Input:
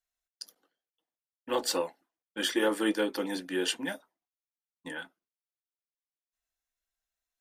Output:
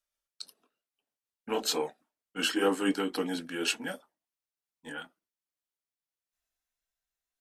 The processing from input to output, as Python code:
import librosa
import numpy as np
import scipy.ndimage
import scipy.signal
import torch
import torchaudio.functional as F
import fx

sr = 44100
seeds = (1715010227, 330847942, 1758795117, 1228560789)

y = fx.pitch_glide(x, sr, semitones=-2.5, runs='ending unshifted')
y = y * librosa.db_to_amplitude(1.5)